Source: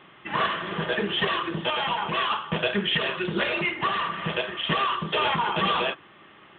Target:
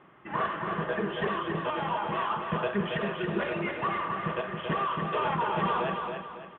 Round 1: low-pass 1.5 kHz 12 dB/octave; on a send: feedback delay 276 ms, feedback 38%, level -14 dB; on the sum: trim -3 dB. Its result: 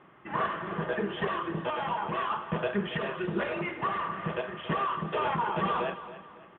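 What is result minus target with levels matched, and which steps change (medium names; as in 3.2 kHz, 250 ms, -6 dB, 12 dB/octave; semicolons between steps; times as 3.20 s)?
echo-to-direct -9 dB
change: feedback delay 276 ms, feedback 38%, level -5 dB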